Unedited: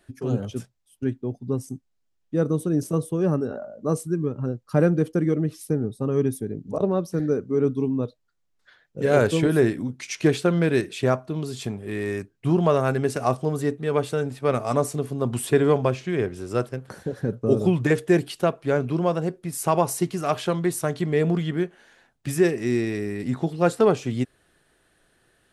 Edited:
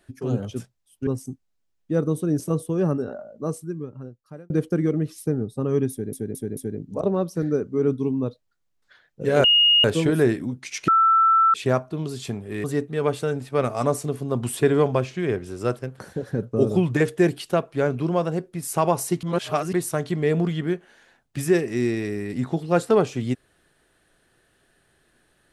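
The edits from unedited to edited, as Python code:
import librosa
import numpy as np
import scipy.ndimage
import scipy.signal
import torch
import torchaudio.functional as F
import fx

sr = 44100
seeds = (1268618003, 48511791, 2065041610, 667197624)

y = fx.edit(x, sr, fx.cut(start_s=1.07, length_s=0.43),
    fx.fade_out_span(start_s=3.36, length_s=1.57),
    fx.stutter(start_s=6.34, slice_s=0.22, count=4),
    fx.insert_tone(at_s=9.21, length_s=0.4, hz=2860.0, db=-13.0),
    fx.bleep(start_s=10.25, length_s=0.66, hz=1330.0, db=-13.5),
    fx.cut(start_s=12.01, length_s=1.53),
    fx.reverse_span(start_s=20.13, length_s=0.5), tone=tone)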